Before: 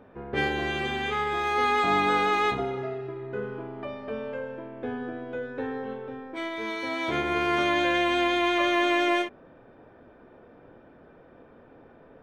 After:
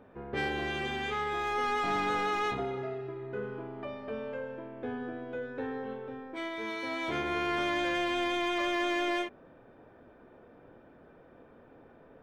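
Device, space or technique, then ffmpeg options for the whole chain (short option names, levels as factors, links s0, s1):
saturation between pre-emphasis and de-emphasis: -af "highshelf=f=2600:g=9.5,asoftclip=type=tanh:threshold=0.1,highshelf=f=2600:g=-9.5,volume=0.668"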